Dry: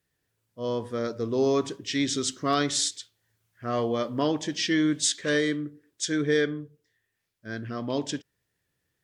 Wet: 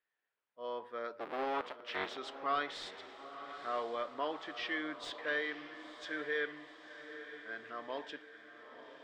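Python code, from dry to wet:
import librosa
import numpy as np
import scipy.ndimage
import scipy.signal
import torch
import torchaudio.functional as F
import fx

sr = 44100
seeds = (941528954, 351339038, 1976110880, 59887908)

y = fx.cycle_switch(x, sr, every=3, mode='inverted', at=(1.19, 2.17))
y = scipy.signal.sosfilt(scipy.signal.butter(2, 830.0, 'highpass', fs=sr, output='sos'), y)
y = 10.0 ** (-19.0 / 20.0) * np.tanh(y / 10.0 ** (-19.0 / 20.0))
y = fx.air_absorb(y, sr, metres=450.0)
y = fx.echo_diffused(y, sr, ms=947, feedback_pct=55, wet_db=-11.5)
y = y * 10.0 ** (-1.0 / 20.0)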